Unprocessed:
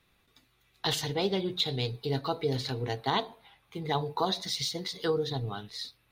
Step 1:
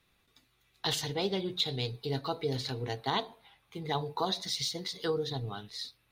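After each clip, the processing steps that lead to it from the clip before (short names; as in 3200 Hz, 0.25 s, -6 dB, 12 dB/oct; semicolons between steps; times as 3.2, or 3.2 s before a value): bell 6800 Hz +2.5 dB 2.1 oct; gain -3 dB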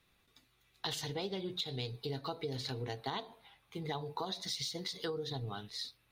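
compressor, threshold -34 dBFS, peak gain reduction 9 dB; gain -1 dB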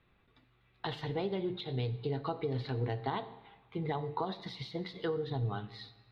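air absorption 450 m; reverb RT60 1.3 s, pre-delay 4 ms, DRR 13 dB; gain +5.5 dB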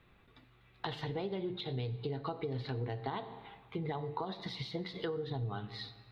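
compressor 2.5:1, threshold -43 dBFS, peak gain reduction 9.5 dB; gain +5 dB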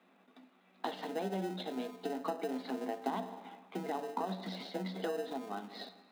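in parallel at -5.5 dB: sample-and-hold 39×; on the sum: rippled Chebyshev high-pass 180 Hz, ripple 9 dB; gain +5 dB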